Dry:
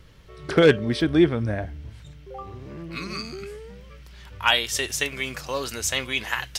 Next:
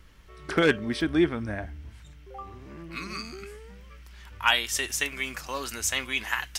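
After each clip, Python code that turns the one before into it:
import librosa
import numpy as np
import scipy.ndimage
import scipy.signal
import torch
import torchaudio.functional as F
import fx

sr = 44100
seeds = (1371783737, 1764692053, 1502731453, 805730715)

y = fx.graphic_eq(x, sr, hz=(125, 500, 4000), db=(-11, -8, -5))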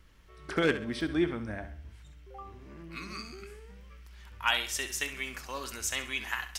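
y = fx.echo_feedback(x, sr, ms=66, feedback_pct=38, wet_db=-11.5)
y = y * librosa.db_to_amplitude(-5.5)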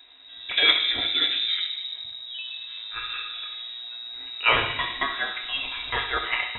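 y = fx.notch_comb(x, sr, f0_hz=330.0)
y = fx.rev_fdn(y, sr, rt60_s=1.5, lf_ratio=0.95, hf_ratio=0.5, size_ms=55.0, drr_db=3.0)
y = fx.freq_invert(y, sr, carrier_hz=3800)
y = y * librosa.db_to_amplitude(8.0)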